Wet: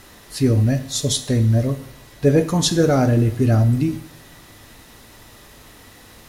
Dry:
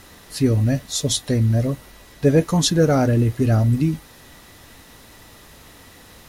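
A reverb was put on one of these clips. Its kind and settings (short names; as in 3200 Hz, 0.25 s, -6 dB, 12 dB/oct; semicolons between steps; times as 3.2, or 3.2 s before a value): two-slope reverb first 0.61 s, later 2 s, from -18 dB, DRR 9 dB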